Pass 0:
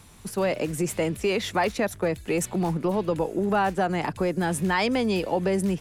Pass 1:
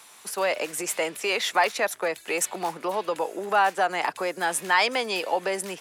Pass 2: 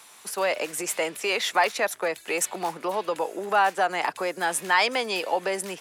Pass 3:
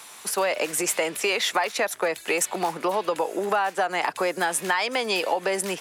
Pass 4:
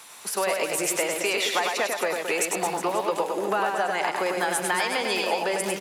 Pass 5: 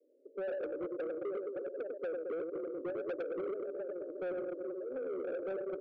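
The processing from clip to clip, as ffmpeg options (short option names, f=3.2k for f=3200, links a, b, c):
-af "highpass=700,volume=5dB"
-af anull
-af "acompressor=threshold=-26dB:ratio=10,volume=6dB"
-af "aecho=1:1:100|220|364|536.8|744.2:0.631|0.398|0.251|0.158|0.1,volume=-2.5dB"
-af "asuperpass=centerf=390:order=20:qfactor=1.2,asoftclip=type=tanh:threshold=-29dB,volume=-4.5dB"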